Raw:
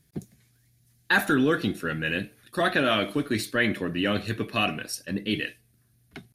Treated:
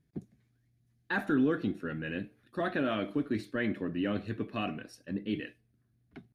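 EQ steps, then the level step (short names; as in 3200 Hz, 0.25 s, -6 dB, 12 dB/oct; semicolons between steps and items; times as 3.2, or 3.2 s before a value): LPF 1400 Hz 6 dB/oct; bell 270 Hz +4.5 dB 0.82 oct; -7.5 dB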